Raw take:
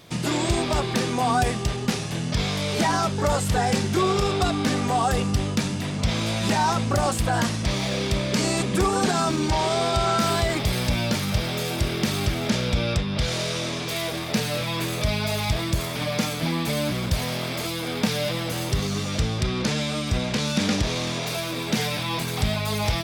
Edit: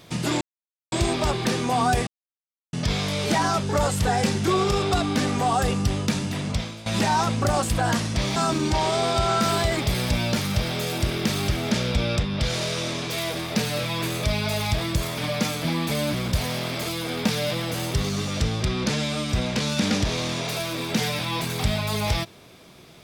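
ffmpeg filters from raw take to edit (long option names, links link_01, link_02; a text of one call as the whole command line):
ffmpeg -i in.wav -filter_complex "[0:a]asplit=6[link_01][link_02][link_03][link_04][link_05][link_06];[link_01]atrim=end=0.41,asetpts=PTS-STARTPTS,afade=type=out:start_time=0.406:duration=0.004:curve=hsin,apad=pad_dur=0.51[link_07];[link_02]atrim=start=0.41:end=1.56,asetpts=PTS-STARTPTS,afade=type=in:duration=0.004:curve=hsin,afade=type=out:start_time=1.146:duration=0.004:curve=hsin[link_08];[link_03]atrim=start=1.56:end=2.22,asetpts=PTS-STARTPTS,volume=0[link_09];[link_04]atrim=start=2.22:end=6.35,asetpts=PTS-STARTPTS,afade=type=in:duration=0.004:curve=hsin,afade=type=out:start_time=3.77:duration=0.36:curve=qua:silence=0.158489[link_10];[link_05]atrim=start=6.35:end=7.852,asetpts=PTS-STARTPTS,afade=type=in:duration=0.004:curve=hsin:silence=0.158489[link_11];[link_06]atrim=start=9.138[link_12];[link_07][link_08][link_09][link_10][link_11]concat=n=5:v=0:a=1[link_13];[link_13][link_12]acrossfade=duration=0.004:curve1=hsin:curve2=hsin" out.wav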